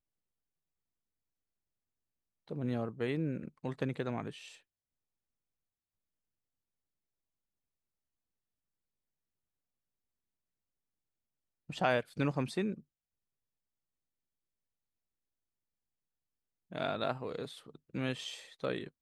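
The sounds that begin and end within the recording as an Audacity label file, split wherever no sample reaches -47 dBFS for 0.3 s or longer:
2.480000	4.550000	sound
11.690000	12.800000	sound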